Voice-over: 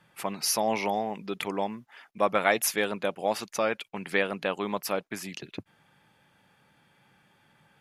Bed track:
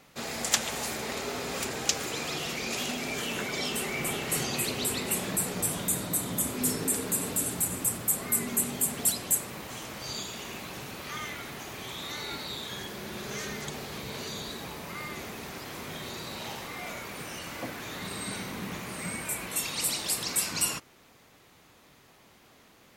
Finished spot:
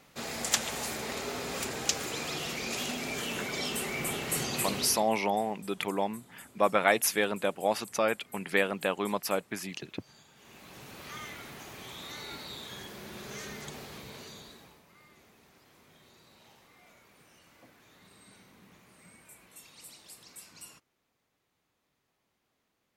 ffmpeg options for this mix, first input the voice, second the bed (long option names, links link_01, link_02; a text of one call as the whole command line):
ffmpeg -i stem1.wav -i stem2.wav -filter_complex "[0:a]adelay=4400,volume=-0.5dB[link_01];[1:a]volume=16dB,afade=type=out:start_time=4.77:duration=0.33:silence=0.0841395,afade=type=in:start_time=10.34:duration=0.7:silence=0.125893,afade=type=out:start_time=13.8:duration=1.04:silence=0.16788[link_02];[link_01][link_02]amix=inputs=2:normalize=0" out.wav